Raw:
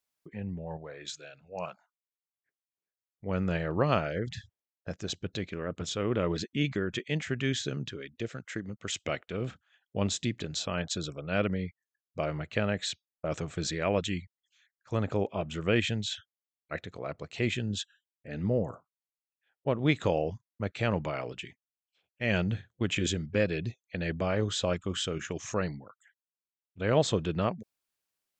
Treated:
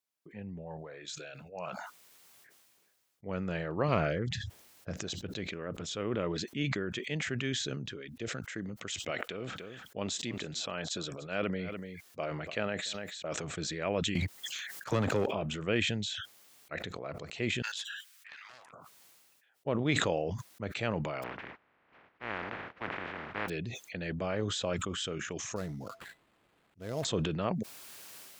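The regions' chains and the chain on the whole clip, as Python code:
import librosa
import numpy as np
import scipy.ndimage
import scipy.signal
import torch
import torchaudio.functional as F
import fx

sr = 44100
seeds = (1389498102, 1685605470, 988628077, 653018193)

y = fx.chain(x, sr, fx.low_shelf(hz=170.0, db=8.0),
    fx.doppler_dist(depth_ms=0.12), at=(3.88, 5.01))
y = fx.chain(y, sr, fx.low_shelf(hz=180.0, db=-9.0),
    fx.echo_single(ms=292, db=-23.0), at=(9.11, 13.44))
y = fx.chain(y, sr, fx.high_shelf(hz=4100.0, db=7.0),
    fx.leveller(passes=2),
    fx.band_squash(depth_pct=70), at=(14.15, 15.26))
y = fx.chain(y, sr, fx.steep_highpass(hz=1200.0, slope=36),
    fx.doppler_dist(depth_ms=0.29), at=(17.62, 18.73))
y = fx.spec_flatten(y, sr, power=0.1, at=(21.22, 23.48), fade=0.02)
y = fx.lowpass(y, sr, hz=2100.0, slope=24, at=(21.22, 23.48), fade=0.02)
y = fx.chain(y, sr, fx.comb_fb(f0_hz=670.0, decay_s=0.19, harmonics='odd', damping=0.0, mix_pct=70),
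    fx.sample_hold(seeds[0], rate_hz=5800.0, jitter_pct=20),
    fx.tilt_eq(slope=-2.0), at=(25.56, 27.05))
y = fx.highpass(y, sr, hz=130.0, slope=6)
y = fx.sustainer(y, sr, db_per_s=27.0)
y = F.gain(torch.from_numpy(y), -4.0).numpy()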